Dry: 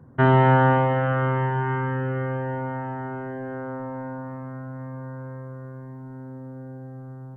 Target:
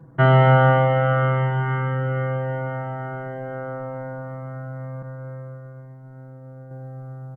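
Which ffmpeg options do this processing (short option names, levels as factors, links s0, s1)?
-filter_complex "[0:a]asettb=1/sr,asplit=3[s0][s1][s2];[s0]atrim=end=5.024[s3];[s1]atrim=start=5.02:end=6.71,asetpts=PTS-STARTPTS,afade=t=in:d=0.004:c=qsin,afade=t=out:st=1.686:d=0.004:c=qsin,agate=range=0.0224:threshold=0.0224:ratio=3:detection=peak[s4];[s2]atrim=start=6.706[s5];[s3][s4]acrossfade=d=0.004:c1=hsin:c2=qsin[s6];[s6][s5]acrossfade=d=0.004:c1=qsin:c2=hsin,aecho=1:1:6.1:0.93"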